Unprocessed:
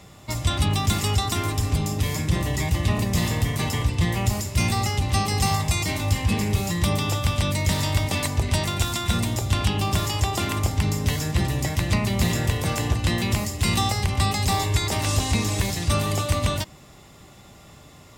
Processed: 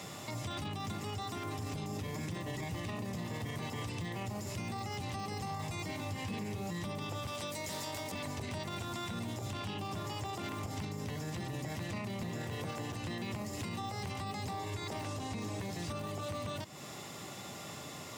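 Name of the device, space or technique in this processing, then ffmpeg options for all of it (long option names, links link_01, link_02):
broadcast voice chain: -filter_complex "[0:a]highpass=frequency=180:poles=1,asettb=1/sr,asplit=3[link_01][link_02][link_03];[link_01]atrim=end=7.274[link_04];[link_02]atrim=start=7.27:end=8.12,asetpts=PTS-STARTPTS,afade=type=in:duration=0.004:curve=qsin,afade=type=out:start_time=0.846:duration=0.004:curve=qsin,bass=frequency=250:gain=-11,treble=frequency=4000:gain=10[link_05];[link_03]atrim=start=8.116[link_06];[link_04][link_05]acrossfade=duration=0.004:curve1=hsin:curve2=qsin[link_07];[link_07][link_06]acrossfade=duration=0.004:curve1=qsin:curve2=hsin,highpass=frequency=90:width=0.5412,highpass=frequency=90:width=1.3066,deesser=0.9,acompressor=threshold=-40dB:ratio=5,equalizer=frequency=5900:width_type=o:width=0.77:gain=2,alimiter=level_in=11dB:limit=-24dB:level=0:latency=1:release=22,volume=-11dB,volume=4dB"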